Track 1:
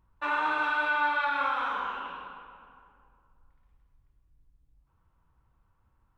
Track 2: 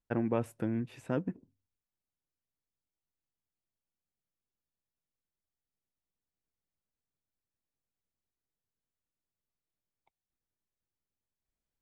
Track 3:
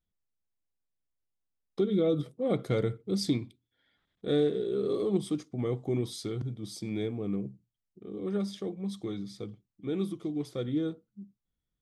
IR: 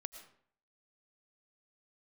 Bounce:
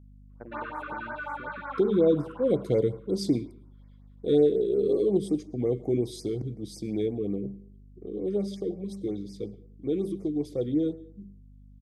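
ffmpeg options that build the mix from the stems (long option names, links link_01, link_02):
-filter_complex "[0:a]flanger=delay=20:depth=8:speed=2.2,acompressor=threshold=-37dB:ratio=4,lowpass=3100,adelay=300,volume=-0.5dB[link_01];[1:a]acompressor=threshold=-34dB:ratio=6,adelay=300,volume=-13dB[link_02];[2:a]equalizer=frequency=1300:width=1.5:gain=-14,bandreject=frequency=195.1:width_type=h:width=4,bandreject=frequency=390.2:width_type=h:width=4,bandreject=frequency=585.3:width_type=h:width=4,bandreject=frequency=780.4:width_type=h:width=4,bandreject=frequency=975.5:width_type=h:width=4,bandreject=frequency=1170.6:width_type=h:width=4,bandreject=frequency=1365.7:width_type=h:width=4,bandreject=frequency=1560.8:width_type=h:width=4,bandreject=frequency=1755.9:width_type=h:width=4,bandreject=frequency=1951:width_type=h:width=4,bandreject=frequency=2146.1:width_type=h:width=4,bandreject=frequency=2341.2:width_type=h:width=4,bandreject=frequency=2536.3:width_type=h:width=4,bandreject=frequency=2731.4:width_type=h:width=4,bandreject=frequency=2926.5:width_type=h:width=4,volume=-4dB,asplit=3[link_03][link_04][link_05];[link_04]volume=-5.5dB[link_06];[link_05]apad=whole_len=285630[link_07];[link_01][link_07]sidechaincompress=threshold=-37dB:ratio=8:attack=7:release=777[link_08];[3:a]atrim=start_sample=2205[link_09];[link_06][link_09]afir=irnorm=-1:irlink=0[link_10];[link_08][link_02][link_03][link_10]amix=inputs=4:normalize=0,equalizer=frequency=510:width=0.59:gain=9,aeval=exprs='val(0)+0.00316*(sin(2*PI*50*n/s)+sin(2*PI*2*50*n/s)/2+sin(2*PI*3*50*n/s)/3+sin(2*PI*4*50*n/s)/4+sin(2*PI*5*50*n/s)/5)':channel_layout=same,afftfilt=real='re*(1-between(b*sr/1024,680*pow(3500/680,0.5+0.5*sin(2*PI*5.5*pts/sr))/1.41,680*pow(3500/680,0.5+0.5*sin(2*PI*5.5*pts/sr))*1.41))':imag='im*(1-between(b*sr/1024,680*pow(3500/680,0.5+0.5*sin(2*PI*5.5*pts/sr))/1.41,680*pow(3500/680,0.5+0.5*sin(2*PI*5.5*pts/sr))*1.41))':win_size=1024:overlap=0.75"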